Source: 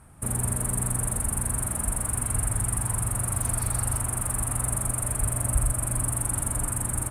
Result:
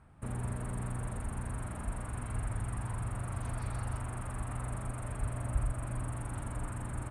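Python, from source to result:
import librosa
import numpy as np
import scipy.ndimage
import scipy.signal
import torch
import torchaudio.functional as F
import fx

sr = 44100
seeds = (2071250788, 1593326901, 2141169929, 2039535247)

y = scipy.signal.sosfilt(scipy.signal.butter(2, 3900.0, 'lowpass', fs=sr, output='sos'), x)
y = y * 10.0 ** (-7.0 / 20.0)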